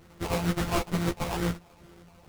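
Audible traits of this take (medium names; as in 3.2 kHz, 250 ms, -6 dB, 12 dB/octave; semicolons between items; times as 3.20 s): a buzz of ramps at a fixed pitch in blocks of 256 samples; phasing stages 6, 2.2 Hz, lowest notch 290–1300 Hz; aliases and images of a low sample rate 1.7 kHz, jitter 20%; a shimmering, thickened sound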